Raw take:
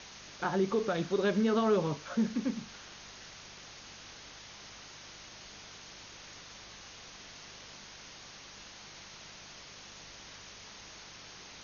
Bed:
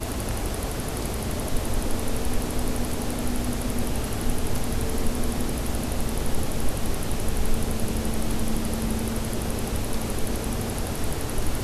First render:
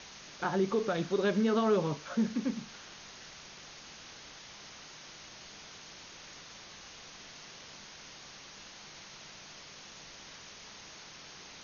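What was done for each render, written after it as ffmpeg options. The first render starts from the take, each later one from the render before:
-af "bandreject=f=50:t=h:w=4,bandreject=f=100:t=h:w=4"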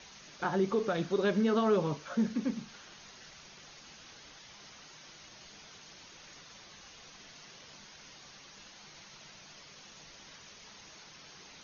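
-af "afftdn=nr=6:nf=-51"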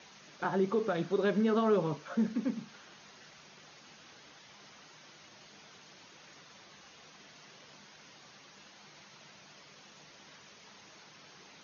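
-af "highpass=120,highshelf=f=3700:g=-7"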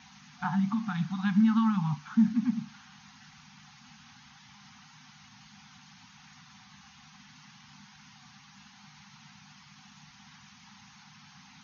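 -af "afftfilt=real='re*(1-between(b*sr/4096,260,730))':imag='im*(1-between(b*sr/4096,260,730))':win_size=4096:overlap=0.75,lowshelf=f=470:g=9"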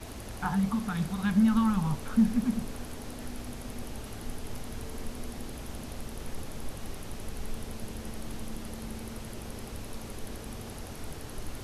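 -filter_complex "[1:a]volume=0.224[s0];[0:a][s0]amix=inputs=2:normalize=0"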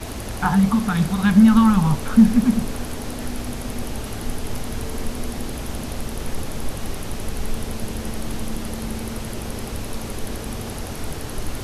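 -af "volume=3.55"

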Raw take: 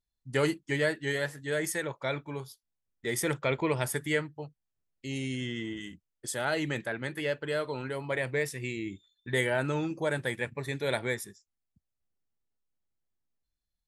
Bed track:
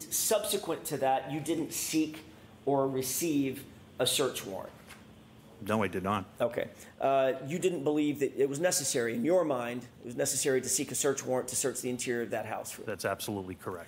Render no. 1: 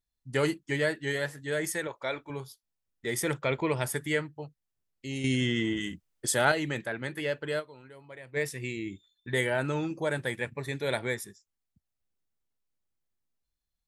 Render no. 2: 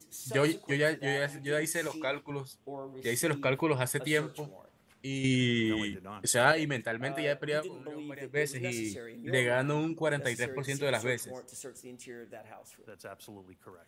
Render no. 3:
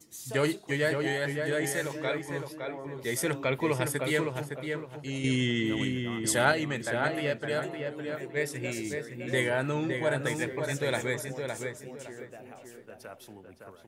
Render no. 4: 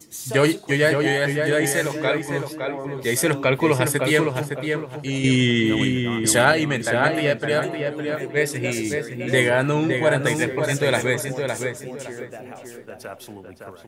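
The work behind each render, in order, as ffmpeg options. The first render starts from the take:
-filter_complex "[0:a]asettb=1/sr,asplit=3[s0][s1][s2];[s0]atrim=end=1.874[s3];[s1]atrim=start=1.87:end=2.3,asetpts=PTS-STARTPTS,afade=t=in:d=0.004:c=qsin,afade=t=out:st=0.426:d=0.004:c=qsin,equalizer=f=150:t=o:w=0.92:g=-12.5[s4];[s2]atrim=start=2.296[s5];[s3][s4]acrossfade=d=0.004:c1=hsin:c2=qsin[s6];[s6][s5]acrossfade=d=0.004:c1=qsin:c2=hsin,asettb=1/sr,asplit=3[s7][s8][s9];[s7]atrim=end=5.244[s10];[s8]atrim=start=5.24:end=6.52,asetpts=PTS-STARTPTS,afade=t=in:d=0.004:c=qsin,afade=t=out:st=1.276:d=0.004:c=qsin,acontrast=89[s11];[s9]atrim=start=6.516[s12];[s10][s11]acrossfade=d=0.004:c1=hsin:c2=qsin[s13];[s13][s12]acrossfade=d=0.004:c1=qsin:c2=hsin,asplit=3[s14][s15][s16];[s14]atrim=end=7.77,asetpts=PTS-STARTPTS,afade=t=out:st=7.59:d=0.18:c=exp:silence=0.177828[s17];[s15]atrim=start=7.77:end=8.19,asetpts=PTS-STARTPTS,volume=0.178[s18];[s16]atrim=start=8.19,asetpts=PTS-STARTPTS,afade=t=in:d=0.18:c=exp:silence=0.177828[s19];[s17][s18][s19]concat=n=3:v=0:a=1"
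-filter_complex "[1:a]volume=0.211[s0];[0:a][s0]amix=inputs=2:normalize=0"
-filter_complex "[0:a]asplit=2[s0][s1];[s1]adelay=562,lowpass=f=2300:p=1,volume=0.596,asplit=2[s2][s3];[s3]adelay=562,lowpass=f=2300:p=1,volume=0.31,asplit=2[s4][s5];[s5]adelay=562,lowpass=f=2300:p=1,volume=0.31,asplit=2[s6][s7];[s7]adelay=562,lowpass=f=2300:p=1,volume=0.31[s8];[s0][s2][s4][s6][s8]amix=inputs=5:normalize=0"
-af "volume=2.99,alimiter=limit=0.708:level=0:latency=1"

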